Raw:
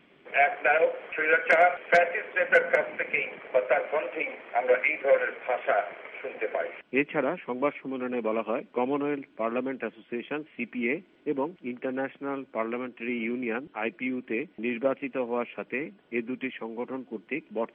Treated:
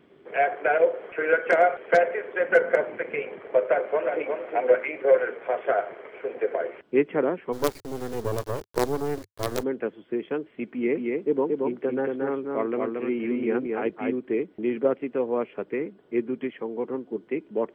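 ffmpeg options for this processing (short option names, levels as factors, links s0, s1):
-filter_complex "[0:a]asplit=2[s0][s1];[s1]afade=t=in:st=3.67:d=0.01,afade=t=out:st=4.32:d=0.01,aecho=0:1:360|720|1080:0.562341|0.0843512|0.0126527[s2];[s0][s2]amix=inputs=2:normalize=0,asplit=3[s3][s4][s5];[s3]afade=t=out:st=7.52:d=0.02[s6];[s4]acrusher=bits=4:dc=4:mix=0:aa=0.000001,afade=t=in:st=7.52:d=0.02,afade=t=out:st=9.62:d=0.02[s7];[s5]afade=t=in:st=9.62:d=0.02[s8];[s6][s7][s8]amix=inputs=3:normalize=0,asettb=1/sr,asplit=3[s9][s10][s11];[s9]atrim=end=10.644[s12];[s10]atrim=start=10.64:end=14.17,asetpts=PTS-STARTPTS,afade=t=in:d=0.004:c=qsin,afade=t=out:st=3.526:d=0.004:c=qsin,aecho=1:1:226:0.708,atrim=end_sample=155673[s13];[s11]atrim=start=14.166[s14];[s12][s13]acrossfade=d=0.004:c1=hsin:c2=qsin[s15];[s15][s14]acrossfade=d=0.004:c1=qsin:c2=hsin,equalizer=f=100:t=o:w=0.67:g=9,equalizer=f=400:t=o:w=0.67:g=8,equalizer=f=2500:t=o:w=0.67:g=-9"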